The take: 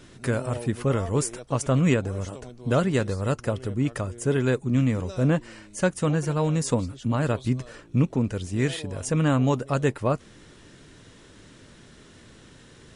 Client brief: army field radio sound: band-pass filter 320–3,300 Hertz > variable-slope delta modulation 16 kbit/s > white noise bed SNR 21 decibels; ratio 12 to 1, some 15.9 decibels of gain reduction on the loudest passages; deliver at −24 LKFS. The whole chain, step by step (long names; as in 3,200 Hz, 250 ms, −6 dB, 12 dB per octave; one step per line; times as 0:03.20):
downward compressor 12 to 1, threshold −33 dBFS
band-pass filter 320–3,300 Hz
variable-slope delta modulation 16 kbit/s
white noise bed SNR 21 dB
level +20.5 dB